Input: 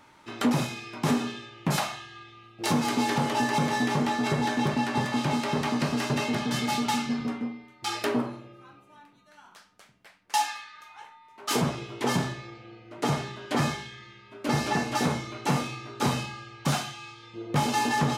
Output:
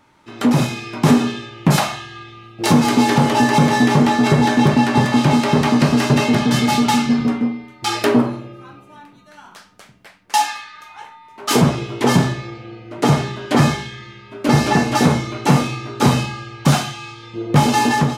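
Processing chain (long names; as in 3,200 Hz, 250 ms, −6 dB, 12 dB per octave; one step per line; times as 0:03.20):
automatic gain control gain up to 11.5 dB
low-shelf EQ 430 Hz +5 dB
level −1.5 dB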